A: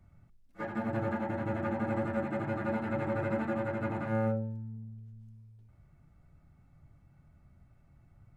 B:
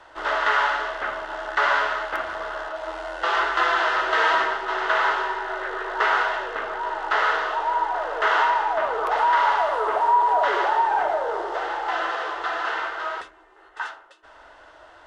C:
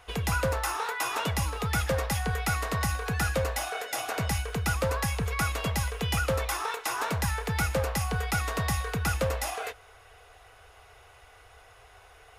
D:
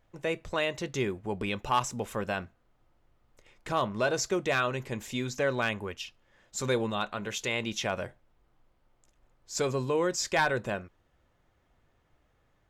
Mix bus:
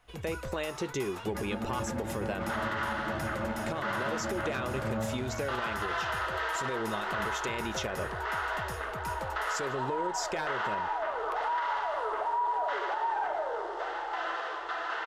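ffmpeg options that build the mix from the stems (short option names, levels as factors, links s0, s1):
-filter_complex "[0:a]adelay=750,volume=0.75[s0];[1:a]adelay=2250,volume=0.398[s1];[2:a]volume=0.224[s2];[3:a]adynamicequalizer=threshold=0.00708:dfrequency=380:dqfactor=1.4:tfrequency=380:tqfactor=1.4:attack=5:release=100:ratio=0.375:range=3:mode=boostabove:tftype=bell,acompressor=threshold=0.0316:ratio=6,volume=1.12[s3];[s0][s1][s2][s3]amix=inputs=4:normalize=0,alimiter=limit=0.0708:level=0:latency=1:release=96"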